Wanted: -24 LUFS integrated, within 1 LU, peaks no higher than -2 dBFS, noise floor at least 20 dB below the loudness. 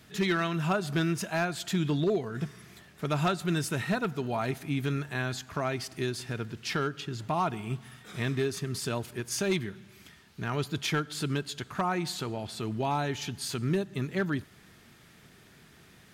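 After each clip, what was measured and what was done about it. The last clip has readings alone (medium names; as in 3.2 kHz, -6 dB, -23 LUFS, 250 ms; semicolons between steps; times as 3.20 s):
clipped samples 0.3%; clipping level -20.5 dBFS; loudness -31.5 LUFS; peak level -20.5 dBFS; loudness target -24.0 LUFS
-> clip repair -20.5 dBFS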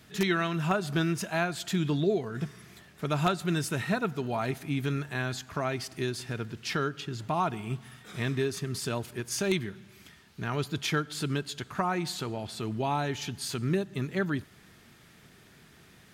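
clipped samples 0.0%; loudness -31.5 LUFS; peak level -11.5 dBFS; loudness target -24.0 LUFS
-> trim +7.5 dB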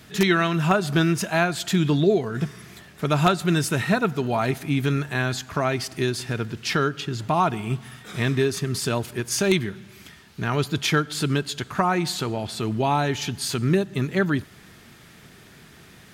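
loudness -24.0 LUFS; peak level -4.0 dBFS; noise floor -49 dBFS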